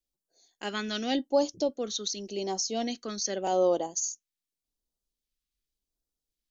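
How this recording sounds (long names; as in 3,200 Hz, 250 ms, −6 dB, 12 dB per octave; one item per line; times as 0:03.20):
phaser sweep stages 2, 0.87 Hz, lowest notch 740–1,900 Hz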